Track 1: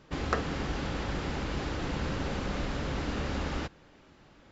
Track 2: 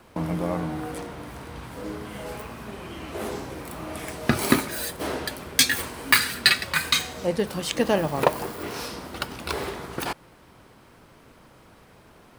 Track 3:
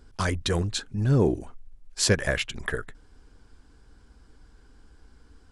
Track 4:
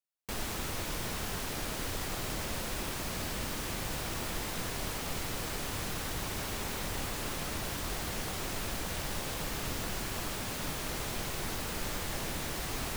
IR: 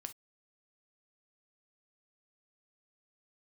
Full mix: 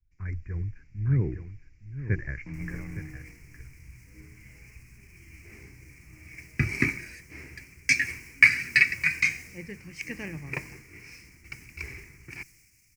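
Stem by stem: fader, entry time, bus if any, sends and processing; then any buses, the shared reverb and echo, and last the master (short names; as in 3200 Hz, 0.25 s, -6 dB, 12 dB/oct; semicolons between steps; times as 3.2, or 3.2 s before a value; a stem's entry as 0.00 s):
-12.5 dB, 0.00 s, no send, no echo send, compressor 6:1, threshold -42 dBFS, peak gain reduction 17.5 dB; AGC gain up to 3.5 dB
-3.5 dB, 2.30 s, no send, no echo send, LPF 2500 Hz 12 dB/oct
-2.0 dB, 0.00 s, no send, echo send -8 dB, steep low-pass 1700 Hz 36 dB/oct; low shelf 180 Hz -5.5 dB
-15.0 dB, 2.25 s, no send, no echo send, limiter -32 dBFS, peak gain reduction 9.5 dB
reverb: off
echo: echo 0.863 s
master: EQ curve 130 Hz 0 dB, 230 Hz -12 dB, 330 Hz -9 dB, 600 Hz -26 dB, 1400 Hz -16 dB, 2300 Hz +10 dB, 3500 Hz -25 dB, 5300 Hz +7 dB, 11000 Hz +3 dB; three-band expander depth 70%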